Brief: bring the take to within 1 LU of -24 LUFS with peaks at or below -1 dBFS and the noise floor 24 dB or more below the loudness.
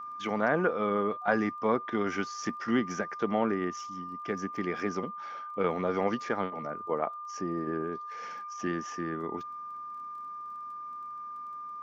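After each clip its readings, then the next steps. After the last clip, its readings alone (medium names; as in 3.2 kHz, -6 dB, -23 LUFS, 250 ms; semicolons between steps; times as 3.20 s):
tick rate 21 per s; steady tone 1.2 kHz; tone level -38 dBFS; loudness -32.5 LUFS; peak level -12.0 dBFS; loudness target -24.0 LUFS
-> de-click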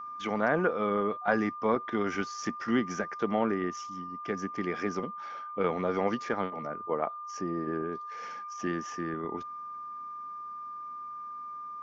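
tick rate 0 per s; steady tone 1.2 kHz; tone level -38 dBFS
-> band-stop 1.2 kHz, Q 30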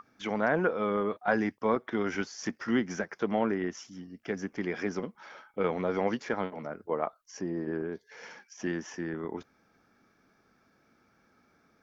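steady tone not found; loudness -32.5 LUFS; peak level -12.5 dBFS; loudness target -24.0 LUFS
-> trim +8.5 dB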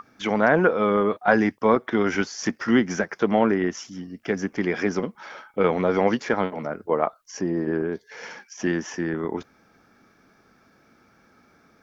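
loudness -24.0 LUFS; peak level -4.0 dBFS; noise floor -60 dBFS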